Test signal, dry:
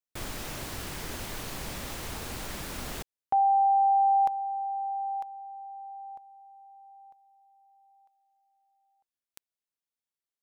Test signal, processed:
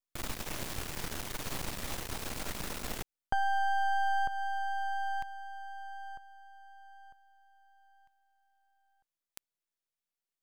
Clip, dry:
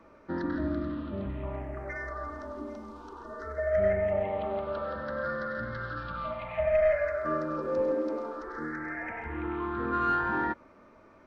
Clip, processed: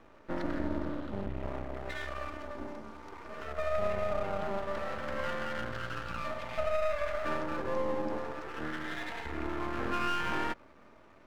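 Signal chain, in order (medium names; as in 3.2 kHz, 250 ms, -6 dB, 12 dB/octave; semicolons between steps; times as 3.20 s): half-wave rectifier; compression 3:1, threshold -29 dBFS; trim +2.5 dB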